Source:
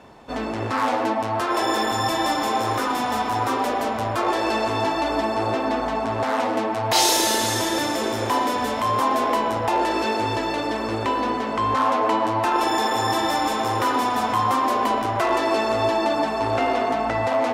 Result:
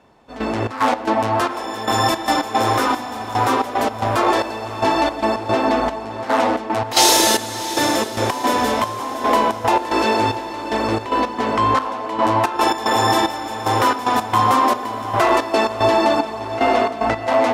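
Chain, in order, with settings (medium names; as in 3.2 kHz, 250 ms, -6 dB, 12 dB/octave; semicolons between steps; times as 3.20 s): trance gate "...xx.x.xxx" 112 bpm -12 dB; echo that smears into a reverb 676 ms, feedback 46%, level -14 dB; trim +5.5 dB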